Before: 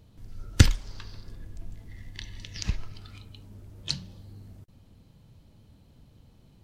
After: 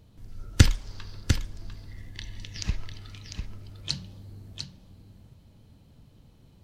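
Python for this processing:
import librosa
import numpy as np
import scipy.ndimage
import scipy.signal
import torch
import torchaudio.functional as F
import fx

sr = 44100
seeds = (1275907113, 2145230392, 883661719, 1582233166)

y = x + 10.0 ** (-7.0 / 20.0) * np.pad(x, (int(699 * sr / 1000.0), 0))[:len(x)]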